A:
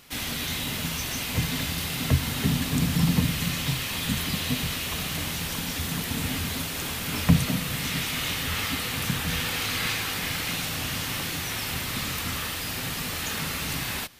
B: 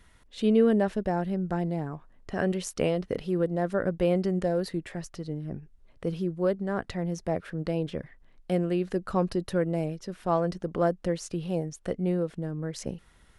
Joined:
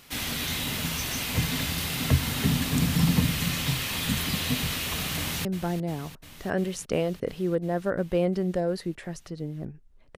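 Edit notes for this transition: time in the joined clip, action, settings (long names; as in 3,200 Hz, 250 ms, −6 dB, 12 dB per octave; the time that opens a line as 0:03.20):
A
0:05.17–0:05.45: delay throw 350 ms, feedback 80%, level −13.5 dB
0:05.45: continue with B from 0:01.33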